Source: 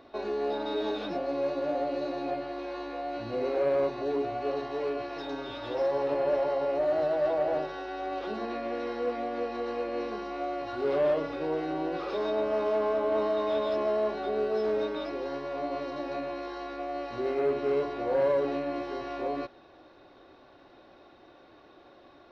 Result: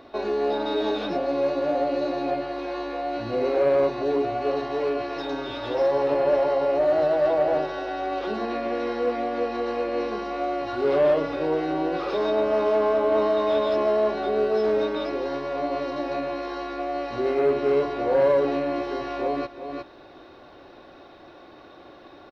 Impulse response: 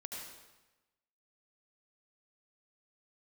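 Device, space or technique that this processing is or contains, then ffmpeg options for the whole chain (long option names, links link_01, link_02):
ducked delay: -filter_complex "[0:a]asplit=3[link_01][link_02][link_03];[link_02]adelay=359,volume=-3dB[link_04];[link_03]apad=whole_len=999724[link_05];[link_04][link_05]sidechaincompress=threshold=-46dB:ratio=8:attack=7.6:release=325[link_06];[link_01][link_06]amix=inputs=2:normalize=0,volume=6dB"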